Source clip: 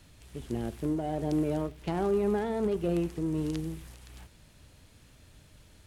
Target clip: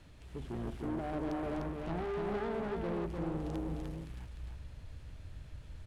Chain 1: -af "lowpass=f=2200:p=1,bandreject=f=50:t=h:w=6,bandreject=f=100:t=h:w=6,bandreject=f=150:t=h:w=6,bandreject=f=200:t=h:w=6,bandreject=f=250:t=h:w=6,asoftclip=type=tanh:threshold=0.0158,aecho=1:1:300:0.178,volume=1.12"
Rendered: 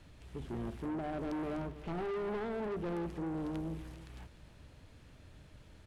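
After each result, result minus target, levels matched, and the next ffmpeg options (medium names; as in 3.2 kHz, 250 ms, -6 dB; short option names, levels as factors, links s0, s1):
echo-to-direct -11.5 dB; 125 Hz band -2.5 dB
-af "lowpass=f=2200:p=1,bandreject=f=50:t=h:w=6,bandreject=f=100:t=h:w=6,bandreject=f=150:t=h:w=6,bandreject=f=200:t=h:w=6,bandreject=f=250:t=h:w=6,asoftclip=type=tanh:threshold=0.0158,aecho=1:1:300:0.668,volume=1.12"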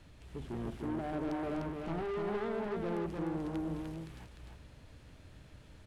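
125 Hz band -2.5 dB
-af "lowpass=f=2200:p=1,asubboost=boost=3.5:cutoff=120,bandreject=f=50:t=h:w=6,bandreject=f=100:t=h:w=6,bandreject=f=150:t=h:w=6,bandreject=f=200:t=h:w=6,bandreject=f=250:t=h:w=6,asoftclip=type=tanh:threshold=0.0158,aecho=1:1:300:0.668,volume=1.12"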